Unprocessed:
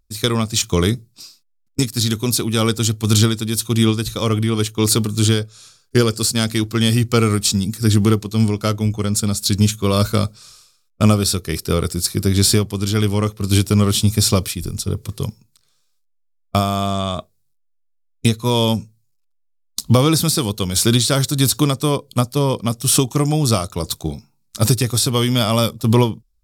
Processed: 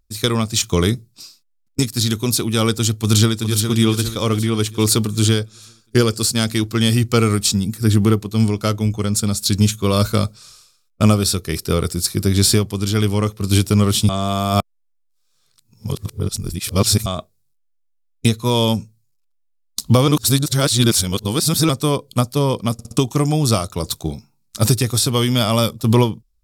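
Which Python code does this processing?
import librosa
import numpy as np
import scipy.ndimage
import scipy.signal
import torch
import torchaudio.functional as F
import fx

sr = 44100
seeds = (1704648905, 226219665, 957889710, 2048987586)

y = fx.echo_throw(x, sr, start_s=2.97, length_s=0.68, ms=410, feedback_pct=50, wet_db=-7.5)
y = fx.peak_eq(y, sr, hz=5600.0, db=-5.0, octaves=1.7, at=(7.54, 8.35))
y = fx.edit(y, sr, fx.reverse_span(start_s=14.09, length_s=2.97),
    fx.reverse_span(start_s=20.08, length_s=1.61),
    fx.stutter_over(start_s=22.73, slice_s=0.06, count=4), tone=tone)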